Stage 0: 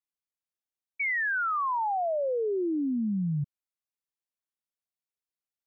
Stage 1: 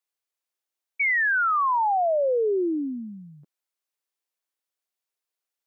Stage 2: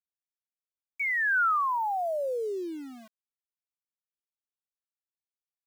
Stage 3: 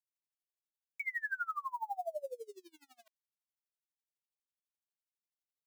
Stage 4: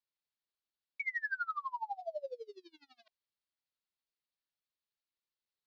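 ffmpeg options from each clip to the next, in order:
-af "highpass=f=320:w=0.5412,highpass=f=320:w=1.3066,volume=2"
-filter_complex "[0:a]equalizer=f=1400:t=o:w=0.73:g=6.5,acrossover=split=290[s0][s1];[s0]alimiter=level_in=7.5:limit=0.0631:level=0:latency=1,volume=0.133[s2];[s2][s1]amix=inputs=2:normalize=0,aeval=exprs='val(0)*gte(abs(val(0)),0.0133)':c=same,volume=0.398"
-af "highpass=f=580:w=0.5412,highpass=f=580:w=1.3066,equalizer=f=1300:t=o:w=1.3:g=-8,aeval=exprs='val(0)*pow(10,-28*(0.5-0.5*cos(2*PI*12*n/s))/20)':c=same"
-af "adynamicsmooth=sensitivity=6:basefreq=6500,highshelf=f=6200:t=q:w=3:g=-12.5,bandreject=f=720:w=12"

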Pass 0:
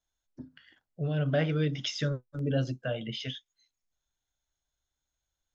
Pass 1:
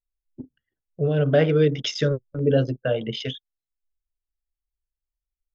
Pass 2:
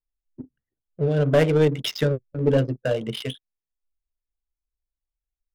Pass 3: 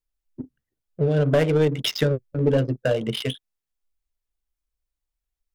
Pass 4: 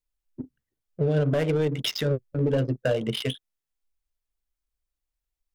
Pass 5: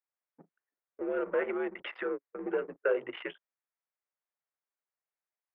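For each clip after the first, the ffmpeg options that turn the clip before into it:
-af "anlmdn=0.398,equalizer=f=440:t=o:w=0.62:g=9.5,volume=2"
-af "adynamicsmooth=sensitivity=6.5:basefreq=1000,aeval=exprs='0.447*(cos(1*acos(clip(val(0)/0.447,-1,1)))-cos(1*PI/2))+0.0501*(cos(4*acos(clip(val(0)/0.447,-1,1)))-cos(4*PI/2))+0.0224*(cos(6*acos(clip(val(0)/0.447,-1,1)))-cos(6*PI/2))':c=same"
-af "acompressor=threshold=0.0794:ratio=2,volume=1.5"
-af "alimiter=limit=0.211:level=0:latency=1:release=69,volume=0.841"
-af "highpass=f=560:t=q:w=0.5412,highpass=f=560:t=q:w=1.307,lowpass=f=2300:t=q:w=0.5176,lowpass=f=2300:t=q:w=0.7071,lowpass=f=2300:t=q:w=1.932,afreqshift=-91"

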